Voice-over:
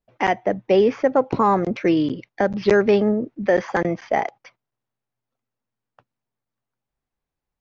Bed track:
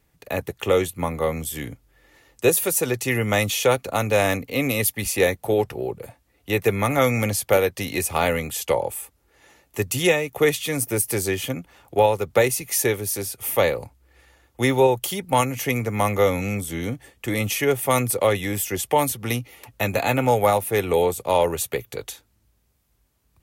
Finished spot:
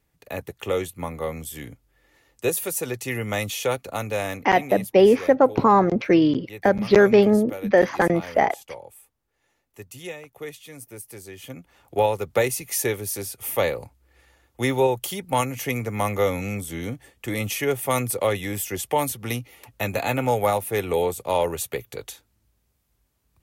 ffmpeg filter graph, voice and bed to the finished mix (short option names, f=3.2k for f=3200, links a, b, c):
-filter_complex "[0:a]adelay=4250,volume=1.5dB[a];[1:a]volume=8.5dB,afade=t=out:st=3.94:d=0.94:silence=0.266073,afade=t=in:st=11.33:d=0.65:silence=0.199526[b];[a][b]amix=inputs=2:normalize=0"